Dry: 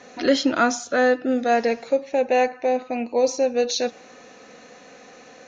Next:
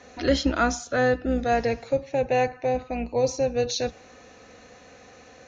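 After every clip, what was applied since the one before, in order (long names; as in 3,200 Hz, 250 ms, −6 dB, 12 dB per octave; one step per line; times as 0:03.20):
sub-octave generator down 2 octaves, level −4 dB
level −3.5 dB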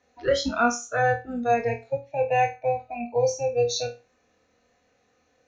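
noise reduction from a noise print of the clip's start 19 dB
flutter between parallel walls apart 4.3 metres, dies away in 0.27 s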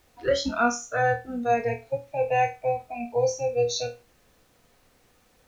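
background noise pink −62 dBFS
level −1 dB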